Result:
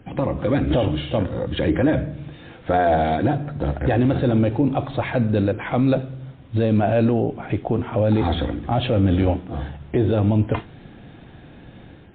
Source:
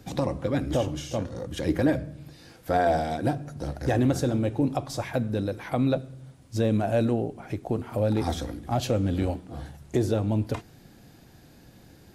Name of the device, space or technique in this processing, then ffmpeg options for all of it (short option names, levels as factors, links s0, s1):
low-bitrate web radio: -af "dynaudnorm=f=130:g=5:m=2.24,alimiter=limit=0.237:level=0:latency=1:release=30,volume=1.41" -ar 8000 -c:a libmp3lame -b:a 24k